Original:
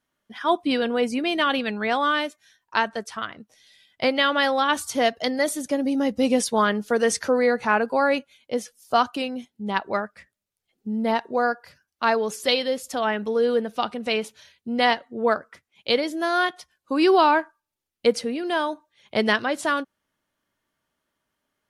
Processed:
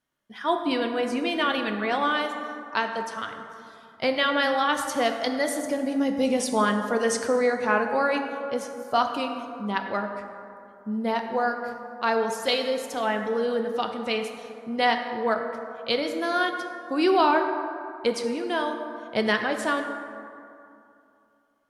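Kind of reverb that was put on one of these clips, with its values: plate-style reverb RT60 2.7 s, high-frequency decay 0.4×, DRR 4.5 dB; gain -3.5 dB

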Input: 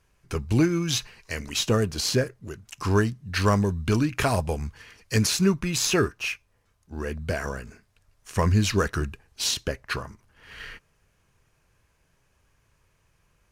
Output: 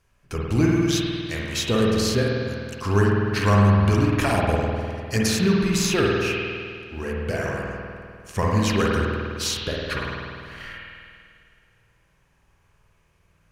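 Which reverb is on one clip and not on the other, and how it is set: spring tank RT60 2.2 s, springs 50 ms, chirp 65 ms, DRR -3 dB; gain -1 dB

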